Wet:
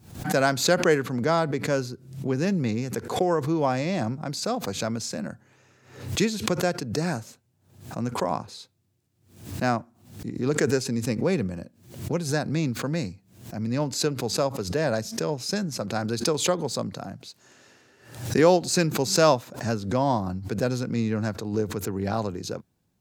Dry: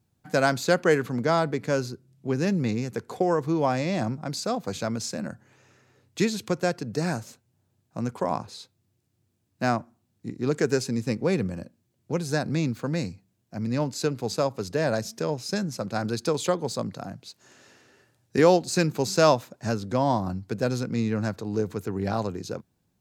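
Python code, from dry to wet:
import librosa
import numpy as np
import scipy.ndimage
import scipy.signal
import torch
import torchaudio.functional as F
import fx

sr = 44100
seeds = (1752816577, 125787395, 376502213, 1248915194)

y = fx.pre_swell(x, sr, db_per_s=100.0)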